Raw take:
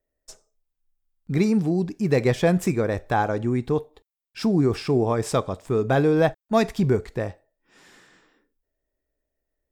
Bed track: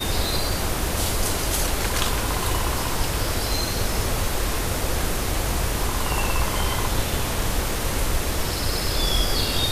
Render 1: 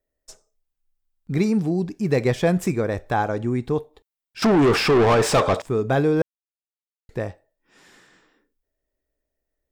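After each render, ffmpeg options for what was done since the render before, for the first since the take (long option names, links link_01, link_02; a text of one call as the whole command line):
ffmpeg -i in.wav -filter_complex "[0:a]asettb=1/sr,asplit=3[link_01][link_02][link_03];[link_01]atrim=end=4.424[link_04];[link_02]atrim=start=4.42:end=5.62,asetpts=PTS-STARTPTS,afade=type=in:duration=0.004:curve=qsin,afade=type=out:start_time=1.196:duration=0.004:curve=qsin,asplit=2[link_05][link_06];[link_06]highpass=frequency=720:poles=1,volume=29dB,asoftclip=type=tanh:threshold=-9.5dB[link_07];[link_05][link_07]amix=inputs=2:normalize=0,lowpass=frequency=2600:poles=1,volume=-6dB[link_08];[link_03]atrim=start=5.616[link_09];[link_04][link_08]acrossfade=duration=0.004:curve1=hsin:curve2=qsin[link_10];[link_10][link_09]acrossfade=duration=0.004:curve1=qsin:curve2=hsin,asplit=3[link_11][link_12][link_13];[link_11]atrim=end=6.22,asetpts=PTS-STARTPTS,afade=type=out:start_time=6.216:duration=0.004:curve=hsin[link_14];[link_12]atrim=start=6.22:end=7.09,asetpts=PTS-STARTPTS,volume=0[link_15];[link_13]atrim=start=7.09,asetpts=PTS-STARTPTS,afade=type=in:duration=0.004:curve=hsin[link_16];[link_14][link_15][link_16]concat=n=3:v=0:a=1" out.wav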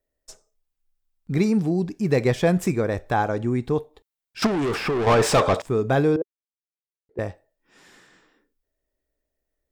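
ffmpeg -i in.wav -filter_complex "[0:a]asettb=1/sr,asplit=3[link_01][link_02][link_03];[link_01]atrim=end=4.464[link_04];[link_02]atrim=start=4.46:end=5.07,asetpts=PTS-STARTPTS,afade=type=in:duration=0.004:curve=qsin,afade=type=out:start_time=0.606:duration=0.004:curve=qsin,acrossover=split=2400|7800[link_05][link_06][link_07];[link_05]acompressor=threshold=-23dB:ratio=4[link_08];[link_06]acompressor=threshold=-39dB:ratio=4[link_09];[link_07]acompressor=threshold=-49dB:ratio=4[link_10];[link_08][link_09][link_10]amix=inputs=3:normalize=0[link_11];[link_03]atrim=start=5.066[link_12];[link_04][link_11]acrossfade=duration=0.004:curve1=hsin:curve2=qsin[link_13];[link_13][link_12]acrossfade=duration=0.004:curve1=qsin:curve2=hsin,asettb=1/sr,asplit=3[link_14][link_15][link_16];[link_14]atrim=end=6.164[link_17];[link_15]atrim=start=6.16:end=7.19,asetpts=PTS-STARTPTS,afade=type=in:duration=0.004:curve=qsin,afade=type=out:start_time=1.026:duration=0.004:curve=qsin,bandpass=frequency=400:width_type=q:width=3.8[link_18];[link_16]atrim=start=7.186[link_19];[link_17][link_18]acrossfade=duration=0.004:curve1=hsin:curve2=qsin[link_20];[link_20][link_19]acrossfade=duration=0.004:curve1=qsin:curve2=hsin" out.wav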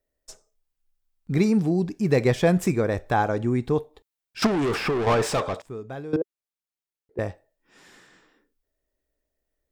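ffmpeg -i in.wav -filter_complex "[0:a]asplit=2[link_01][link_02];[link_01]atrim=end=6.13,asetpts=PTS-STARTPTS,afade=type=out:start_time=4.87:duration=1.26:curve=qua:silence=0.149624[link_03];[link_02]atrim=start=6.13,asetpts=PTS-STARTPTS,afade=type=in:duration=0.004:curve=hsin:silence=0.149624[link_04];[link_03][link_04]concat=n=2:v=0:a=1" out.wav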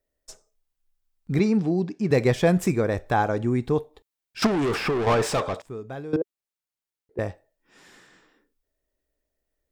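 ffmpeg -i in.wav -filter_complex "[0:a]asettb=1/sr,asplit=3[link_01][link_02][link_03];[link_01]atrim=end=1.394[link_04];[link_02]atrim=start=1.39:end=2.11,asetpts=PTS-STARTPTS,afade=type=in:duration=0.004:curve=qsin,afade=type=out:start_time=0.716:duration=0.004:curve=qsin,highpass=150,lowpass=5500[link_05];[link_03]atrim=start=2.106[link_06];[link_04][link_05]acrossfade=duration=0.004:curve1=hsin:curve2=qsin[link_07];[link_07][link_06]acrossfade=duration=0.004:curve1=qsin:curve2=hsin" out.wav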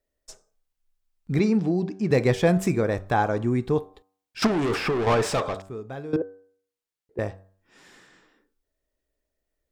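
ffmpeg -i in.wav -af "highshelf=frequency=12000:gain=-4,bandreject=frequency=95.71:width_type=h:width=4,bandreject=frequency=191.42:width_type=h:width=4,bandreject=frequency=287.13:width_type=h:width=4,bandreject=frequency=382.84:width_type=h:width=4,bandreject=frequency=478.55:width_type=h:width=4,bandreject=frequency=574.26:width_type=h:width=4,bandreject=frequency=669.97:width_type=h:width=4,bandreject=frequency=765.68:width_type=h:width=4,bandreject=frequency=861.39:width_type=h:width=4,bandreject=frequency=957.1:width_type=h:width=4,bandreject=frequency=1052.81:width_type=h:width=4,bandreject=frequency=1148.52:width_type=h:width=4,bandreject=frequency=1244.23:width_type=h:width=4,bandreject=frequency=1339.94:width_type=h:width=4,bandreject=frequency=1435.65:width_type=h:width=4,bandreject=frequency=1531.36:width_type=h:width=4,bandreject=frequency=1627.07:width_type=h:width=4" out.wav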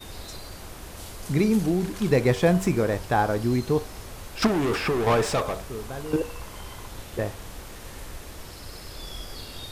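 ffmpeg -i in.wav -i bed.wav -filter_complex "[1:a]volume=-16dB[link_01];[0:a][link_01]amix=inputs=2:normalize=0" out.wav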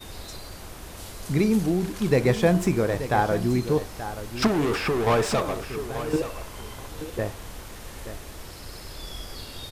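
ffmpeg -i in.wav -af "aecho=1:1:880:0.251" out.wav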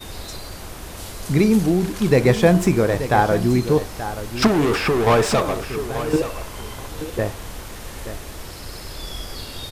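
ffmpeg -i in.wav -af "volume=5.5dB,alimiter=limit=-2dB:level=0:latency=1" out.wav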